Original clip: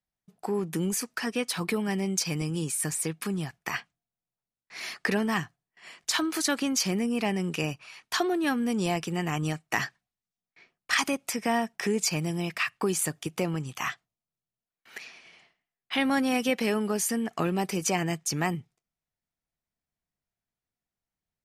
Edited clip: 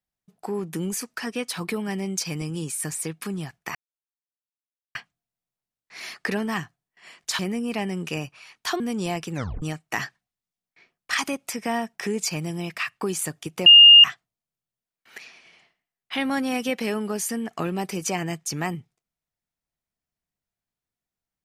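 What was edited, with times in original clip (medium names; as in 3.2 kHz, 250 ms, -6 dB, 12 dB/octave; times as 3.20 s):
3.75 s: insert silence 1.20 s
6.19–6.86 s: delete
8.27–8.60 s: delete
9.12 s: tape stop 0.30 s
13.46–13.84 s: bleep 2.83 kHz -6 dBFS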